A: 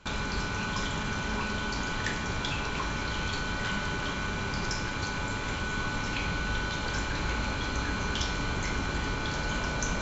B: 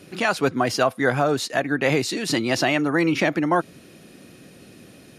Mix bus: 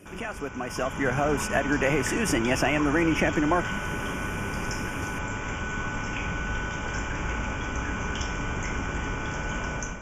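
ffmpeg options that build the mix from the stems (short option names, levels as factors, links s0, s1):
-filter_complex "[0:a]volume=0.316[s0];[1:a]acompressor=threshold=0.0224:ratio=2.5,volume=0.631[s1];[s0][s1]amix=inputs=2:normalize=0,dynaudnorm=f=610:g=3:m=3.55,asuperstop=centerf=4100:order=4:qfactor=1.7"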